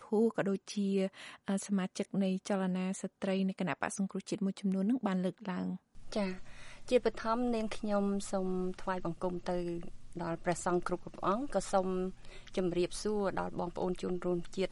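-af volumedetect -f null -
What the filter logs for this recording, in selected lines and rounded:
mean_volume: -34.5 dB
max_volume: -15.9 dB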